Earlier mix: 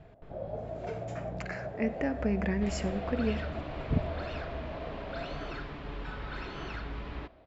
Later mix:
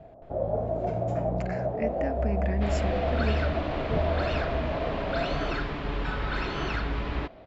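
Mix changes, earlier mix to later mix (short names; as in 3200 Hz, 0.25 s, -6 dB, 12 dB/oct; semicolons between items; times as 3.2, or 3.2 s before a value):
first sound +10.5 dB; second sound +10.5 dB; reverb: off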